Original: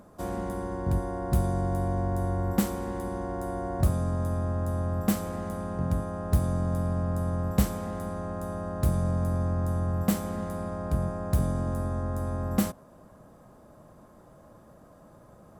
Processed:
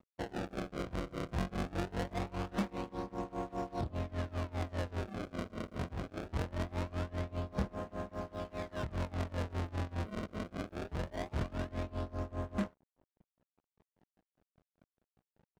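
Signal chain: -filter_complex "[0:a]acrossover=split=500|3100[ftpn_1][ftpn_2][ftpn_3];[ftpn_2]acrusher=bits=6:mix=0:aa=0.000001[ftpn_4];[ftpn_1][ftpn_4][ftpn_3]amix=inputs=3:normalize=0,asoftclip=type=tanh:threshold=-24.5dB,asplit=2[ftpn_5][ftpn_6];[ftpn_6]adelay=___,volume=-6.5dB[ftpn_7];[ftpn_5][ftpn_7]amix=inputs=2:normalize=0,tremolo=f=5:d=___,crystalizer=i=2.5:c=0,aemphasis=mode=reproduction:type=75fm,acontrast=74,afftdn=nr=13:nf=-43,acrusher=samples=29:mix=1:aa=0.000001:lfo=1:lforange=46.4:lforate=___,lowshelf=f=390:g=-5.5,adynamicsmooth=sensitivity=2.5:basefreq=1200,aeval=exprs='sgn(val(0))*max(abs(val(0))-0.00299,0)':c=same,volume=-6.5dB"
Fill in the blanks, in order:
26, 0.87, 0.22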